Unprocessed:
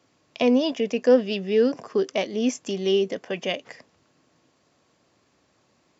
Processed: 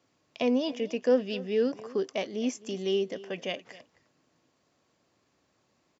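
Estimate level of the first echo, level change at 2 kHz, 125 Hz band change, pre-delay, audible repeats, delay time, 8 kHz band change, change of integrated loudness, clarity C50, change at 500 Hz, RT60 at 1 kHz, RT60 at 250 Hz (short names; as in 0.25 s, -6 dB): -19.0 dB, -6.5 dB, -6.5 dB, none, 1, 0.261 s, n/a, -6.5 dB, none, -6.5 dB, none, none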